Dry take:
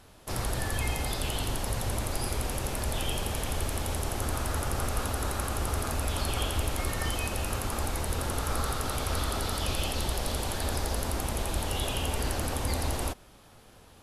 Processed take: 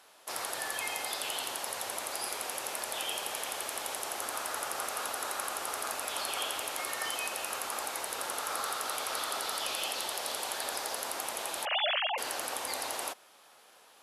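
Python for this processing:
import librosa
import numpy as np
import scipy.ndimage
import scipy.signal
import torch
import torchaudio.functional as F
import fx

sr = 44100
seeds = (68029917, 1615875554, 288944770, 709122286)

y = fx.sine_speech(x, sr, at=(11.65, 12.18))
y = scipy.signal.sosfilt(scipy.signal.butter(2, 640.0, 'highpass', fs=sr, output='sos'), y)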